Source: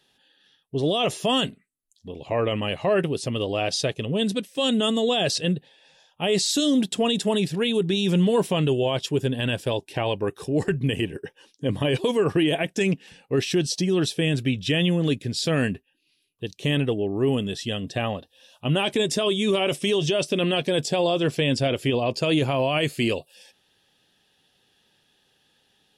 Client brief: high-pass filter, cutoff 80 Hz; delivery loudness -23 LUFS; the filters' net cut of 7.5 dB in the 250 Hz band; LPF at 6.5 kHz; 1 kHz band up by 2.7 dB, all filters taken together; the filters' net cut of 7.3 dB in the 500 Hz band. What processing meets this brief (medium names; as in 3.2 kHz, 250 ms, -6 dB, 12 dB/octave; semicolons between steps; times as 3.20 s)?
high-pass 80 Hz; low-pass 6.5 kHz; peaking EQ 250 Hz -8.5 dB; peaking EQ 500 Hz -9 dB; peaking EQ 1 kHz +8 dB; trim +4 dB